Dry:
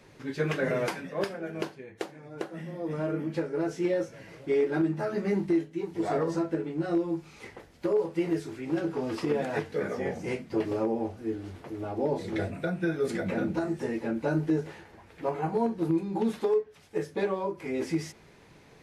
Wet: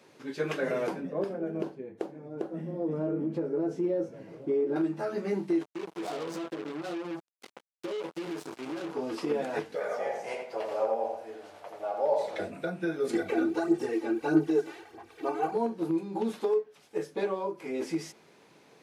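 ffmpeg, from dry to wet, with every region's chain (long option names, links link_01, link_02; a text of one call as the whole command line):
ffmpeg -i in.wav -filter_complex "[0:a]asettb=1/sr,asplit=3[link_01][link_02][link_03];[link_01]atrim=end=0.874[link_04];[link_02]atrim=start=0.87:end=4.76,asetpts=PTS-STARTPTS,afade=type=in:duration=0.004:curve=qsin,afade=type=out:start_time=3.886:duration=0.004:curve=qsin,tiltshelf=frequency=840:gain=10,acompressor=threshold=-24dB:ratio=3:attack=3.2:release=140:knee=1:detection=peak[link_05];[link_03]atrim=start=4.756[link_06];[link_04][link_05]acrossfade=duration=0.004:curve1=hsin:curve2=qsin[link_07];[link_07][link_06]acrossfade=duration=0.004:curve1=qsin:curve2=hsin,asettb=1/sr,asplit=3[link_08][link_09][link_10];[link_08]atrim=end=5.614[link_11];[link_09]atrim=start=5.61:end=8.94,asetpts=PTS-STARTPTS,afade=type=in:duration=0.004:curve=qsin,afade=type=out:start_time=3.326:duration=0.004:curve=qsin,acompressor=threshold=-30dB:ratio=6:attack=3.2:release=140:knee=1:detection=peak,acrusher=bits=5:mix=0:aa=0.5[link_12];[link_10]atrim=start=8.936[link_13];[link_11][link_12]acrossfade=duration=0.004:curve1=hsin:curve2=qsin[link_14];[link_14][link_13]acrossfade=duration=0.004:curve1=qsin:curve2=hsin,asettb=1/sr,asplit=3[link_15][link_16][link_17];[link_15]atrim=end=9.754[link_18];[link_16]atrim=start=9.75:end=12.4,asetpts=PTS-STARTPTS,afade=type=in:duration=0.004:curve=qsin,afade=type=out:start_time=2.646:duration=0.004:curve=qsin,lowshelf=frequency=440:width_type=q:width=3:gain=-11,asplit=2[link_19][link_20];[link_20]adelay=83,lowpass=frequency=2900:poles=1,volume=-3.5dB,asplit=2[link_21][link_22];[link_22]adelay=83,lowpass=frequency=2900:poles=1,volume=0.34,asplit=2[link_23][link_24];[link_24]adelay=83,lowpass=frequency=2900:poles=1,volume=0.34,asplit=2[link_25][link_26];[link_26]adelay=83,lowpass=frequency=2900:poles=1,volume=0.34[link_27];[link_19][link_21][link_23][link_25][link_27]amix=inputs=5:normalize=0,atrim=end_sample=116865[link_28];[link_17]atrim=start=12.396[link_29];[link_18][link_28]acrossfade=duration=0.004:curve1=hsin:curve2=qsin[link_30];[link_30][link_29]acrossfade=duration=0.004:curve1=qsin:curve2=hsin,asettb=1/sr,asplit=3[link_31][link_32][link_33];[link_31]atrim=end=13.134[link_34];[link_32]atrim=start=13.13:end=15.55,asetpts=PTS-STARTPTS,afade=type=in:duration=0.004:curve=qsin,afade=type=out:start_time=2.416:duration=0.004:curve=qsin,aecho=1:1:2.6:0.69,atrim=end_sample=106722,aphaser=in_gain=1:out_gain=1:delay=3.4:decay=0.55:speed=1.6:type=sinusoidal[link_35];[link_33]atrim=start=15.546[link_36];[link_34][link_35]acrossfade=duration=0.004:curve1=hsin:curve2=qsin[link_37];[link_37][link_36]acrossfade=duration=0.004:curve1=qsin:curve2=hsin,highpass=230,equalizer=frequency=1900:width_type=o:width=0.48:gain=-4,volume=-1dB" out.wav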